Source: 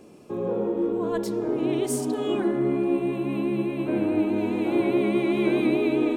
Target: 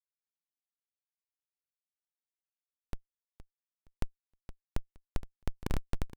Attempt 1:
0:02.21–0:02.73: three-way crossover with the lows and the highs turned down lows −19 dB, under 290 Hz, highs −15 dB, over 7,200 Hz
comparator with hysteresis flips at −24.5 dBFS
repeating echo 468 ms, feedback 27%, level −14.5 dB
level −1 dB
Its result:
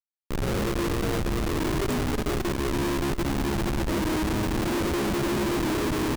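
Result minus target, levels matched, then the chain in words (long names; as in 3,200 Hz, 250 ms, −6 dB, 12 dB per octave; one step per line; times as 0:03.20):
comparator with hysteresis: distortion −35 dB
0:02.21–0:02.73: three-way crossover with the lows and the highs turned down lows −19 dB, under 290 Hz, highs −15 dB, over 7,200 Hz
comparator with hysteresis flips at −13.5 dBFS
repeating echo 468 ms, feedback 27%, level −14.5 dB
level −1 dB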